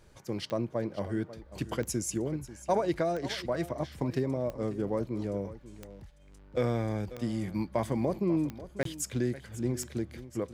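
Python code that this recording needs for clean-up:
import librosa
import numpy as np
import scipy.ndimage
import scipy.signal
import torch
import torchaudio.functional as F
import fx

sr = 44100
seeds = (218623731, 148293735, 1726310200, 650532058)

y = fx.fix_declick_ar(x, sr, threshold=10.0)
y = fx.fix_interpolate(y, sr, at_s=(8.83,), length_ms=23.0)
y = fx.fix_echo_inverse(y, sr, delay_ms=541, level_db=-15.5)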